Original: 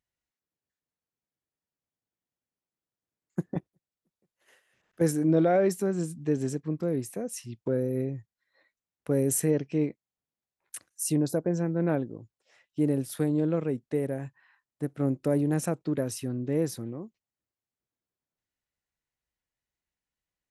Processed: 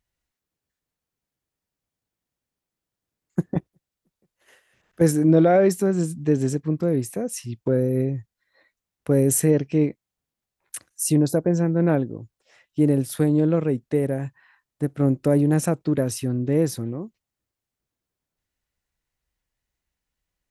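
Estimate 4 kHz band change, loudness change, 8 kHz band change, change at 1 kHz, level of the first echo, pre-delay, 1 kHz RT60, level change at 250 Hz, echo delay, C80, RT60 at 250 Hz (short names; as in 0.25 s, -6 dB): +6.0 dB, +7.0 dB, +6.0 dB, +6.0 dB, none, none, none, +7.0 dB, none, none, none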